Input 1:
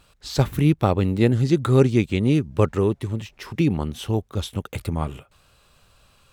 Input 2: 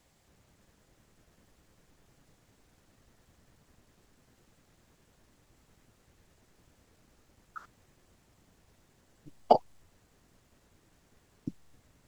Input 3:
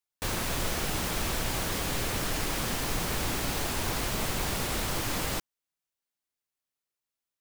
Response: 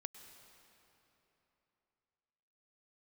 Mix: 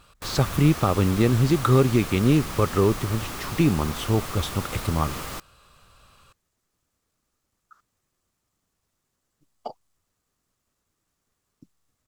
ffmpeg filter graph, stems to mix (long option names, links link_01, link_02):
-filter_complex "[0:a]alimiter=limit=-10dB:level=0:latency=1:release=121,volume=0.5dB[link_01];[1:a]highshelf=frequency=4100:gain=11,adelay=150,volume=-15dB[link_02];[2:a]volume=-4dB[link_03];[link_01][link_02][link_03]amix=inputs=3:normalize=0,equalizer=frequency=1200:width_type=o:width=0.38:gain=7.5"